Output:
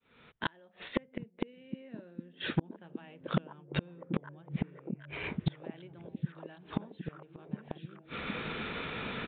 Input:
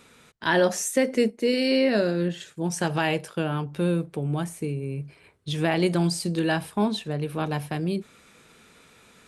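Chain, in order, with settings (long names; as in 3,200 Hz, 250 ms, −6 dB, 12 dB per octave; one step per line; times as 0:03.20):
fade in at the beginning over 2.28 s
in parallel at −1 dB: downward compressor 8 to 1, threshold −37 dBFS, peak gain reduction 18.5 dB
on the sum: gate with flip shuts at −22 dBFS, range −41 dB
hard clipping −31 dBFS, distortion −8 dB
downsampling to 8,000 Hz
on a send: echo through a band-pass that steps 764 ms, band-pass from 170 Hz, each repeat 0.7 octaves, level −2 dB
on the sum: level +11 dB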